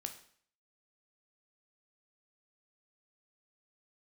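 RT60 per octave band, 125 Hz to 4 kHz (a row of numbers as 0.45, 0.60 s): 0.55, 0.55, 0.55, 0.55, 0.55, 0.55 s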